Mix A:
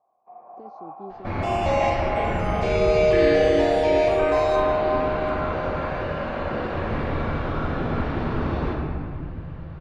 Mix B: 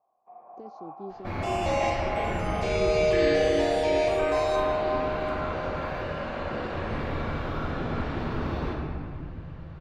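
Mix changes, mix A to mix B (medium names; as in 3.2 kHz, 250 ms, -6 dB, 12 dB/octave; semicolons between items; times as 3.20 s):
first sound -4.0 dB; second sound -5.0 dB; master: add treble shelf 4.5 kHz +10.5 dB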